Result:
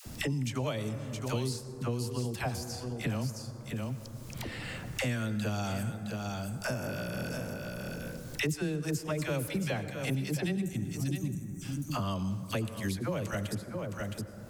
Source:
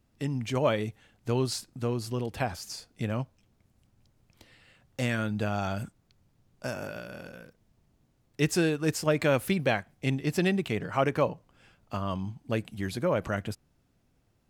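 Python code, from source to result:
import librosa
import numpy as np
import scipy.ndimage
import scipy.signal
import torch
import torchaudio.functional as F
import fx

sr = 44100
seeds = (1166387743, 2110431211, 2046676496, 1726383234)

p1 = fx.spec_box(x, sr, start_s=10.62, length_s=1.0, low_hz=340.0, high_hz=5600.0, gain_db=-30)
p2 = fx.bass_treble(p1, sr, bass_db=6, treble_db=9)
p3 = fx.dispersion(p2, sr, late='lows', ms=61.0, hz=600.0)
p4 = p3 + fx.echo_single(p3, sr, ms=665, db=-13.0, dry=0)
p5 = fx.rev_plate(p4, sr, seeds[0], rt60_s=1.6, hf_ratio=0.35, predelay_ms=75, drr_db=13.5)
p6 = fx.band_squash(p5, sr, depth_pct=100)
y = p6 * 10.0 ** (-7.0 / 20.0)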